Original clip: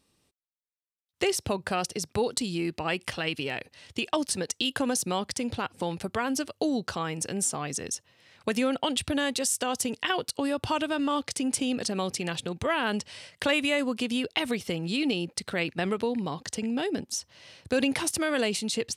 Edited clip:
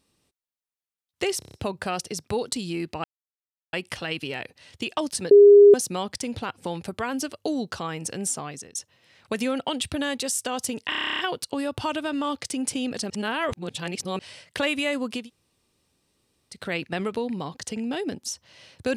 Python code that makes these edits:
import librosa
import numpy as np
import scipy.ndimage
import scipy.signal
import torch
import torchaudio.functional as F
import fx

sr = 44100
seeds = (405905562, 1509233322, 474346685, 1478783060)

y = fx.edit(x, sr, fx.stutter(start_s=1.39, slice_s=0.03, count=6),
    fx.insert_silence(at_s=2.89, length_s=0.69),
    fx.bleep(start_s=4.47, length_s=0.43, hz=407.0, db=-7.5),
    fx.fade_out_to(start_s=7.54, length_s=0.37, floor_db=-19.0),
    fx.stutter(start_s=10.05, slice_s=0.03, count=11),
    fx.reverse_span(start_s=11.96, length_s=1.09),
    fx.room_tone_fill(start_s=14.08, length_s=1.34, crossfade_s=0.16), tone=tone)